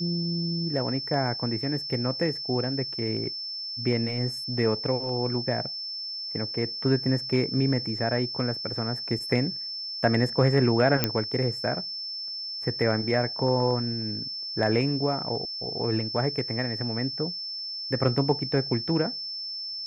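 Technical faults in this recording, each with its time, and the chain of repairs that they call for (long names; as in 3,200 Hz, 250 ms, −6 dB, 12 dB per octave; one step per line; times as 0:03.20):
whistle 5,300 Hz −32 dBFS
0:11.04: click −6 dBFS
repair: click removal
notch filter 5,300 Hz, Q 30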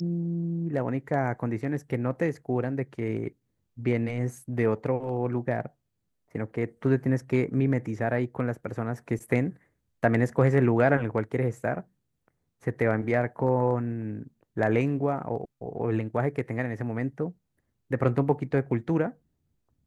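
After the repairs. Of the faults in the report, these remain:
0:11.04: click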